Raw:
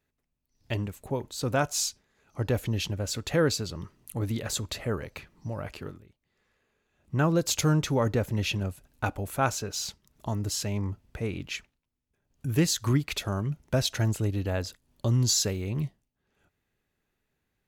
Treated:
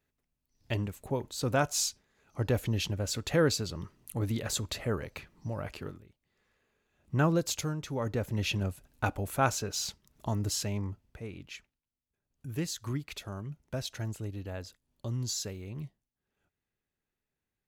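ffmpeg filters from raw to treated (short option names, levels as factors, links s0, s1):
-af "volume=3.35,afade=t=out:st=7.25:d=0.51:silence=0.266073,afade=t=in:st=7.76:d=0.88:silence=0.251189,afade=t=out:st=10.5:d=0.69:silence=0.354813"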